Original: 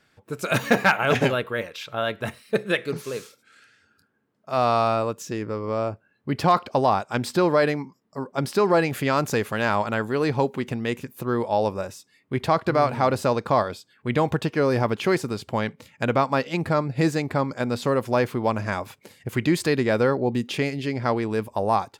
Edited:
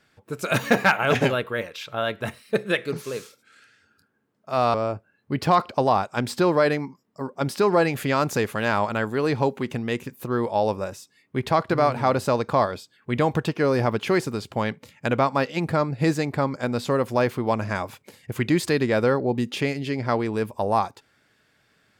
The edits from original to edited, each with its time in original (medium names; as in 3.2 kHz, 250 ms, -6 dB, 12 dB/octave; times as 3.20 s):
4.74–5.71 s: delete